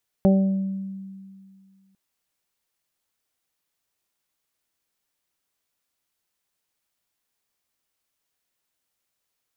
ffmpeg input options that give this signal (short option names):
-f lavfi -i "aevalsrc='0.224*pow(10,-3*t/2.18)*sin(2*PI*193*t)+0.0891*pow(10,-3*t/0.55)*sin(2*PI*386*t)+0.112*pow(10,-3*t/0.77)*sin(2*PI*579*t)+0.0316*pow(10,-3*t/0.5)*sin(2*PI*772*t)':d=1.7:s=44100"